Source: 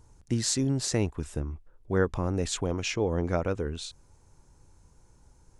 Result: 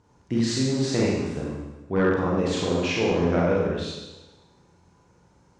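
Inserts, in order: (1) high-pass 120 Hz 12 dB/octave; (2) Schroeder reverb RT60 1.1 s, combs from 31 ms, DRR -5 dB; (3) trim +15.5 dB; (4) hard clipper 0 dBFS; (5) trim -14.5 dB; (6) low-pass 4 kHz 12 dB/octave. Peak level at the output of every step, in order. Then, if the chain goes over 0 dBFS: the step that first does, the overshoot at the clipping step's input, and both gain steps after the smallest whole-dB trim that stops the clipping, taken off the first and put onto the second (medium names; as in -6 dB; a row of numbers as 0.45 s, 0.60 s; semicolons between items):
-10.5 dBFS, -9.0 dBFS, +6.5 dBFS, 0.0 dBFS, -14.5 dBFS, -14.0 dBFS; step 3, 6.5 dB; step 3 +8.5 dB, step 5 -7.5 dB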